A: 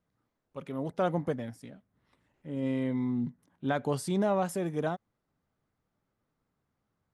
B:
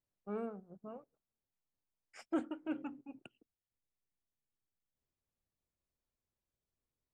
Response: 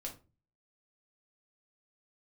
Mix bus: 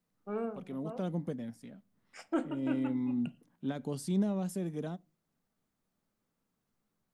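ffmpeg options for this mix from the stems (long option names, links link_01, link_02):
-filter_complex "[0:a]equalizer=frequency=200:width_type=o:width=0.73:gain=7.5,acrossover=split=440|3000[link_01][link_02][link_03];[link_02]acompressor=threshold=-46dB:ratio=2.5[link_04];[link_01][link_04][link_03]amix=inputs=3:normalize=0,volume=-5dB,asplit=2[link_05][link_06];[link_06]volume=-18dB[link_07];[1:a]volume=2dB,asplit=2[link_08][link_09];[link_09]volume=-5dB[link_10];[2:a]atrim=start_sample=2205[link_11];[link_07][link_10]amix=inputs=2:normalize=0[link_12];[link_12][link_11]afir=irnorm=-1:irlink=0[link_13];[link_05][link_08][link_13]amix=inputs=3:normalize=0,equalizer=frequency=68:width=0.57:gain=-6.5"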